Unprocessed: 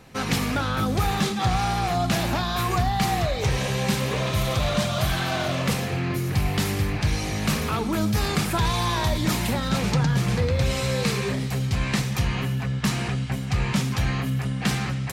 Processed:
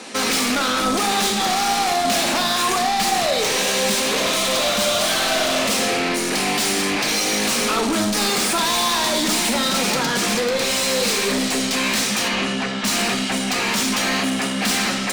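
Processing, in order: Chebyshev band-pass 220–9500 Hz, order 4; high shelf 3300 Hz +10 dB; in parallel at -1.5 dB: limiter -20 dBFS, peak gain reduction 11.5 dB; on the sum: soft clip -27 dBFS, distortion -7 dB; 12.28–12.85 air absorption 63 m; reverb RT60 0.75 s, pre-delay 5 ms, DRR 6.5 dB; gain +8.5 dB

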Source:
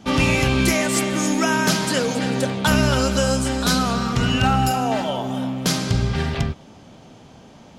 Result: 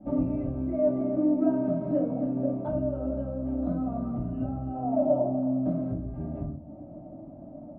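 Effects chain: tilt -3.5 dB/oct; compressor 6:1, threshold -19 dBFS, peak gain reduction 14.5 dB; double band-pass 430 Hz, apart 0.99 oct; air absorption 470 m; reverb RT60 0.30 s, pre-delay 3 ms, DRR -8.5 dB; gain -8 dB

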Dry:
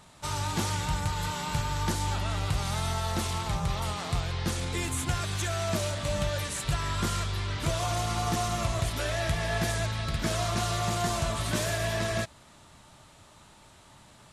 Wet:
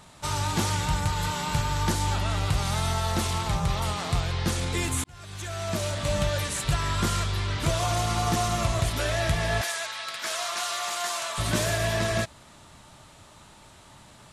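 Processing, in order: 5.04–6.09 fade in; 9.61–11.38 HPF 930 Hz 12 dB/oct; gain +3.5 dB

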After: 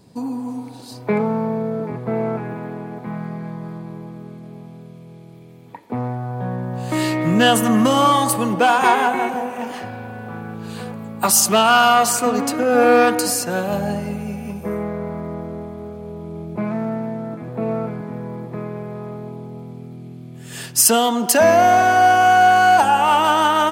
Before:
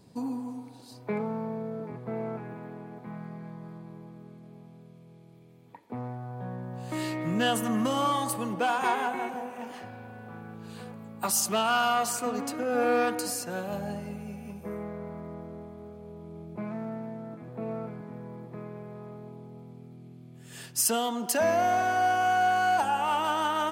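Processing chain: AGC gain up to 6 dB; gain +6 dB

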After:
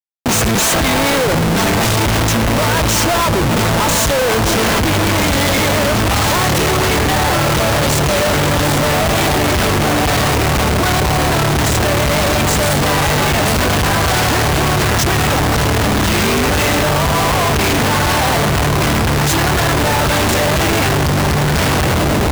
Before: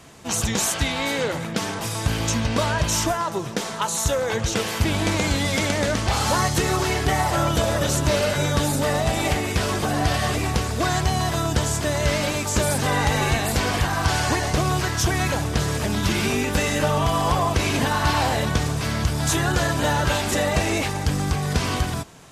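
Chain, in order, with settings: diffused feedback echo 1.382 s, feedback 60%, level -8 dB; Schmitt trigger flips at -29 dBFS; gain +7.5 dB

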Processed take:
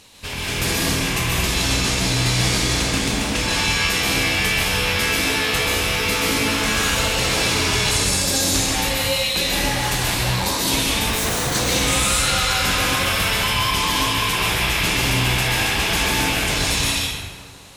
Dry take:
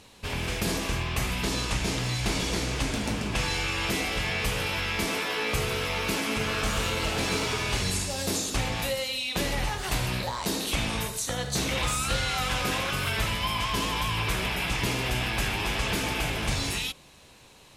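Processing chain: high shelf 2100 Hz +8 dB; 11.08–11.55 Schmitt trigger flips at -30.5 dBFS; plate-style reverb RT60 1.8 s, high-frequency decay 0.55×, pre-delay 0.115 s, DRR -4.5 dB

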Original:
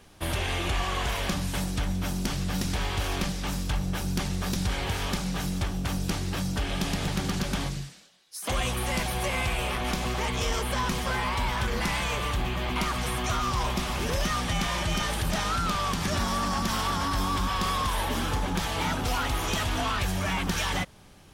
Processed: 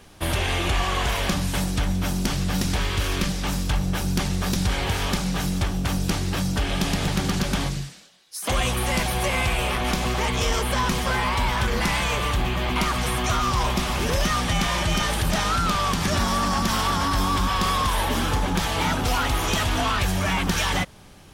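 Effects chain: 2.81–3.3 bell 770 Hz -9 dB 0.49 oct; gain +5 dB

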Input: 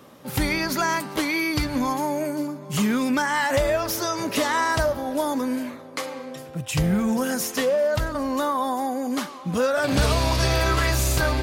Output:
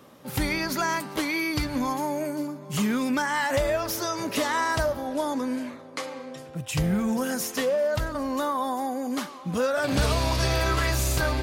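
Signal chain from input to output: 5.07–6.55 LPF 9800 Hz 12 dB/oct; gain -3 dB

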